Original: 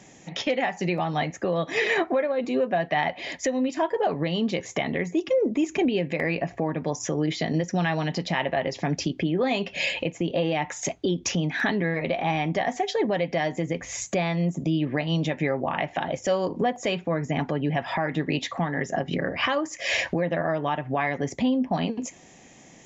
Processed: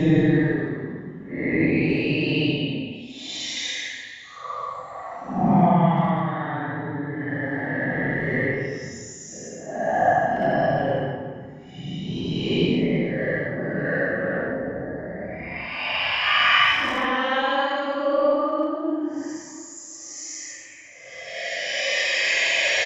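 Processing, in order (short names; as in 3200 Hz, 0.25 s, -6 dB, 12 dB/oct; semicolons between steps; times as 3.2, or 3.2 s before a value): transient shaper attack +8 dB, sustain +1 dB; Paulstretch 13×, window 0.05 s, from 18.17; speakerphone echo 0.34 s, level -13 dB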